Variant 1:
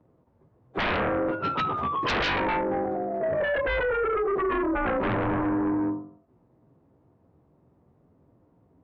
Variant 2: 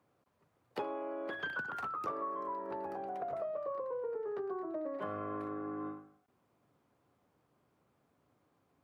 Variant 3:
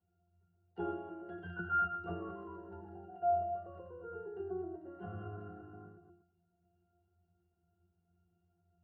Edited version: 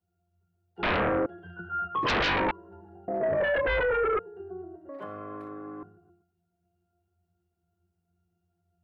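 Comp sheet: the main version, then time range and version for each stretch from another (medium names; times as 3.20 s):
3
0.83–1.26 s: from 1
1.95–2.51 s: from 1
3.08–4.19 s: from 1
4.89–5.83 s: from 2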